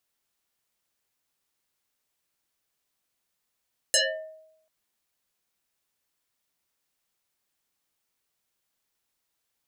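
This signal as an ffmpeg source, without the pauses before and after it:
ffmpeg -f lavfi -i "aevalsrc='0.158*pow(10,-3*t/0.81)*sin(2*PI*632*t+9*pow(10,-3*t/0.5)*sin(2*PI*1.85*632*t))':duration=0.74:sample_rate=44100" out.wav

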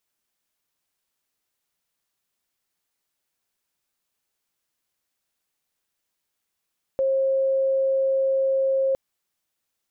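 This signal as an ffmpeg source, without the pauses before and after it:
ffmpeg -f lavfi -i "aevalsrc='0.119*sin(2*PI*536*t)':duration=1.96:sample_rate=44100" out.wav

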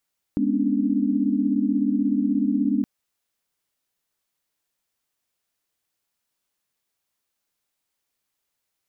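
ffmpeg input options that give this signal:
ffmpeg -f lavfi -i "aevalsrc='0.0596*(sin(2*PI*207.65*t)+sin(2*PI*246.94*t)+sin(2*PI*277.18*t)+sin(2*PI*293.66*t))':duration=2.47:sample_rate=44100" out.wav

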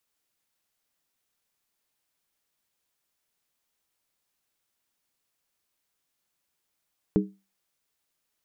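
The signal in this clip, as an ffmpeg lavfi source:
ffmpeg -f lavfi -i "aevalsrc='0.141*pow(10,-3*t/0.28)*sin(2*PI*195*t)+0.112*pow(10,-3*t/0.222)*sin(2*PI*310.8*t)+0.0891*pow(10,-3*t/0.192)*sin(2*PI*416.5*t)':duration=0.63:sample_rate=44100" out.wav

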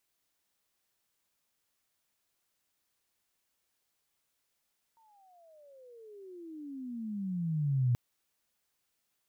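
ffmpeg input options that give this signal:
ffmpeg -f lavfi -i "aevalsrc='pow(10,(-23.5+39*(t/2.98-1))/20)*sin(2*PI*923*2.98/(-35.5*log(2)/12)*(exp(-35.5*log(2)/12*t/2.98)-1))':duration=2.98:sample_rate=44100" out.wav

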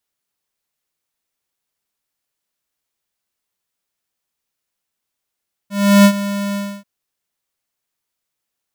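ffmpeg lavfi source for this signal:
ffmpeg -f lavfi -i "aevalsrc='0.473*(2*lt(mod(201*t,1),0.5)-1)':duration=1.136:sample_rate=44100,afade=type=in:duration=0.347,afade=type=out:start_time=0.347:duration=0.074:silence=0.188,afade=type=out:start_time=0.85:duration=0.286" out.wav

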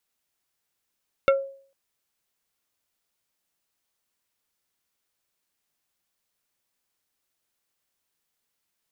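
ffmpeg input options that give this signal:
ffmpeg -f lavfi -i "aevalsrc='0.224*pow(10,-3*t/0.49)*sin(2*PI*546*t)+0.133*pow(10,-3*t/0.163)*sin(2*PI*1365*t)+0.0794*pow(10,-3*t/0.093)*sin(2*PI*2184*t)+0.0473*pow(10,-3*t/0.071)*sin(2*PI*2730*t)+0.0282*pow(10,-3*t/0.052)*sin(2*PI*3549*t)':duration=0.45:sample_rate=44100" out.wav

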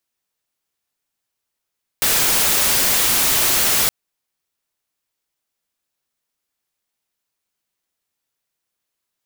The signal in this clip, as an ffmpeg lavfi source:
ffmpeg -f lavfi -i "anoisesrc=color=white:amplitude=0.259:duration=1.87:sample_rate=44100:seed=1" out.wav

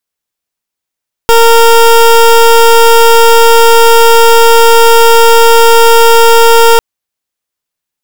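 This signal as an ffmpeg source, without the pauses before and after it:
ffmpeg -f lavfi -i "aevalsrc='0.708*(2*lt(mod(461*t,1),0.22)-1)':duration=5.5:sample_rate=44100" out.wav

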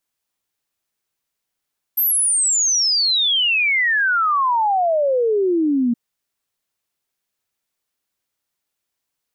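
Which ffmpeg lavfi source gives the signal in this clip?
ffmpeg -f lavfi -i "aevalsrc='0.188*clip(min(t,3.97-t)/0.01,0,1)*sin(2*PI*13000*3.97/log(230/13000)*(exp(log(230/13000)*t/3.97)-1))':duration=3.97:sample_rate=44100" out.wav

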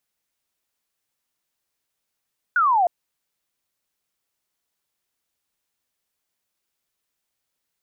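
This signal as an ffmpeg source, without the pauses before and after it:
ffmpeg -f lavfi -i "aevalsrc='0.178*clip(t/0.002,0,1)*clip((0.31-t)/0.002,0,1)*sin(2*PI*1500*0.31/log(670/1500)*(exp(log(670/1500)*t/0.31)-1))':duration=0.31:sample_rate=44100" out.wav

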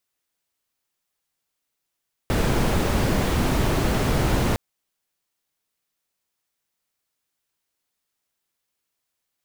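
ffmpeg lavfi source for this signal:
ffmpeg -f lavfi -i "anoisesrc=color=brown:amplitude=0.442:duration=2.26:sample_rate=44100:seed=1" out.wav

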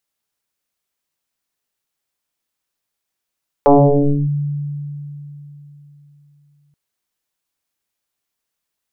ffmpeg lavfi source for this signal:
ffmpeg -f lavfi -i "aevalsrc='0.562*pow(10,-3*t/3.68)*sin(2*PI*145*t+5.4*clip(1-t/0.62,0,1)*sin(2*PI*0.98*145*t))':duration=3.08:sample_rate=44100" out.wav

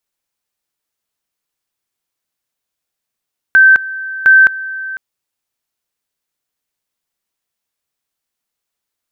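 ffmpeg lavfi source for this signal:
ffmpeg -f lavfi -i "aevalsrc='pow(10,(-3-17.5*gte(mod(t,0.71),0.21))/20)*sin(2*PI*1550*t)':duration=1.42:sample_rate=44100" out.wav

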